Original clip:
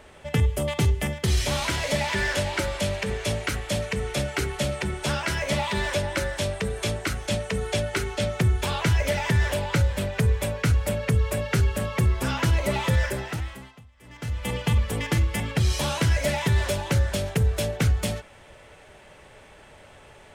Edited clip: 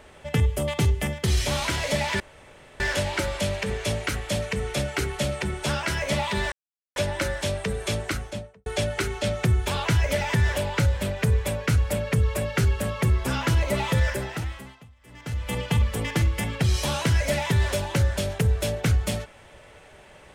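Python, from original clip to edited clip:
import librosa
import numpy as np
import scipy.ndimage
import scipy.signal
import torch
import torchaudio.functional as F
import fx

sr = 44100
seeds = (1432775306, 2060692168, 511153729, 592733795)

y = fx.studio_fade_out(x, sr, start_s=7.01, length_s=0.61)
y = fx.edit(y, sr, fx.insert_room_tone(at_s=2.2, length_s=0.6),
    fx.insert_silence(at_s=5.92, length_s=0.44), tone=tone)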